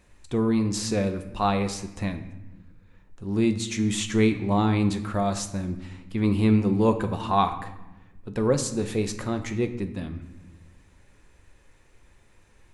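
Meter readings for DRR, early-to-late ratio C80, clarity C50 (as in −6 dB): 7.5 dB, 13.5 dB, 11.5 dB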